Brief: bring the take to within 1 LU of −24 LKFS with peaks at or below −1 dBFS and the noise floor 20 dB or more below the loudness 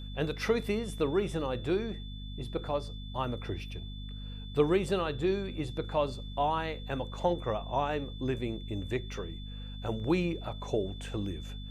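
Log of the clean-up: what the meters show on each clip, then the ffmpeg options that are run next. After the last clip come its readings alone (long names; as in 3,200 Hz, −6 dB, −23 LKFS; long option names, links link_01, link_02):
mains hum 50 Hz; hum harmonics up to 250 Hz; level of the hum −39 dBFS; interfering tone 3,500 Hz; level of the tone −49 dBFS; integrated loudness −33.5 LKFS; sample peak −12.5 dBFS; target loudness −24.0 LKFS
→ -af "bandreject=frequency=50:width_type=h:width=4,bandreject=frequency=100:width_type=h:width=4,bandreject=frequency=150:width_type=h:width=4,bandreject=frequency=200:width_type=h:width=4,bandreject=frequency=250:width_type=h:width=4"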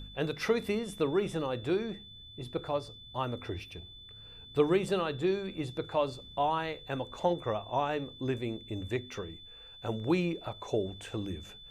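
mains hum none found; interfering tone 3,500 Hz; level of the tone −49 dBFS
→ -af "bandreject=frequency=3500:width=30"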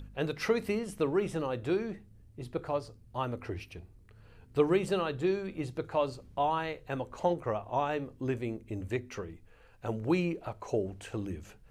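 interfering tone none found; integrated loudness −33.5 LKFS; sample peak −13.5 dBFS; target loudness −24.0 LKFS
→ -af "volume=9.5dB"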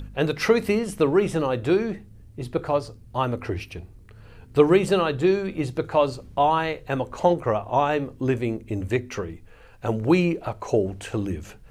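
integrated loudness −24.0 LKFS; sample peak −4.0 dBFS; background noise floor −48 dBFS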